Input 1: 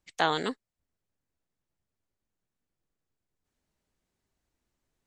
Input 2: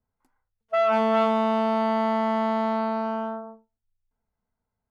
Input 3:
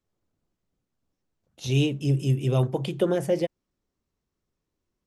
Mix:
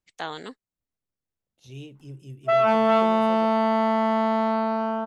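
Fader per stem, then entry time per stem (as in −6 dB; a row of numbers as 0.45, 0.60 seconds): −7.0, +2.0, −18.0 decibels; 0.00, 1.75, 0.00 seconds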